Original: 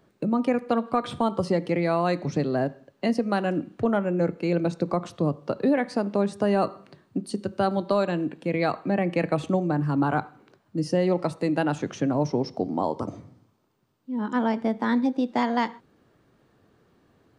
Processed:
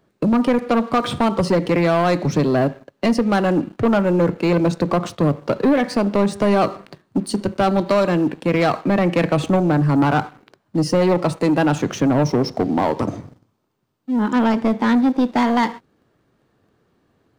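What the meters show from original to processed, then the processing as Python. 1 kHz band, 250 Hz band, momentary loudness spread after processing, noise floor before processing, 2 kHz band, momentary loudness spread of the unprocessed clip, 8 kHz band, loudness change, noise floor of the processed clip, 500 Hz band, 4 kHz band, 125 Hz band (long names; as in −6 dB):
+7.0 dB, +7.5 dB, 7 LU, −66 dBFS, +7.5 dB, 6 LU, +10.5 dB, +7.5 dB, −67 dBFS, +6.5 dB, +9.0 dB, +8.0 dB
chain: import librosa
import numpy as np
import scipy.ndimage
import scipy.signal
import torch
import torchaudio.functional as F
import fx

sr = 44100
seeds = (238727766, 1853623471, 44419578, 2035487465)

y = fx.leveller(x, sr, passes=2)
y = y * librosa.db_to_amplitude(3.0)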